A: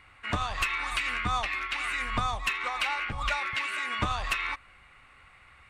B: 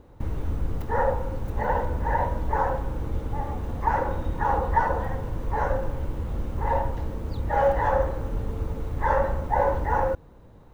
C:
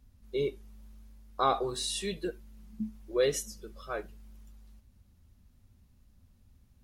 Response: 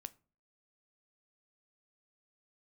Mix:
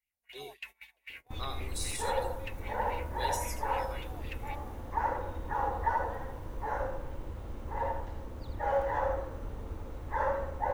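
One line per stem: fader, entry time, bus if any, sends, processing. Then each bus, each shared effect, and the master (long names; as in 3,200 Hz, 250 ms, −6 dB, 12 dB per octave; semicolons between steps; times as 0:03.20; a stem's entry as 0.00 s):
−6.0 dB, 0.00 s, no send, no echo send, phaser with its sweep stopped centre 510 Hz, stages 4; LFO wah 3.8 Hz 500–3,000 Hz, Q 2.2
−8.0 dB, 1.10 s, no send, echo send −6 dB, parametric band 170 Hz −6 dB 0.83 octaves
−4.5 dB, 0.00 s, send −9.5 dB, echo send −9.5 dB, first-order pre-emphasis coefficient 0.8; de-essing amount 85%; high-shelf EQ 3,300 Hz +10 dB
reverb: on, RT60 0.40 s, pre-delay 9 ms
echo: single-tap delay 80 ms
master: noise gate −47 dBFS, range −22 dB; low-shelf EQ 220 Hz −4 dB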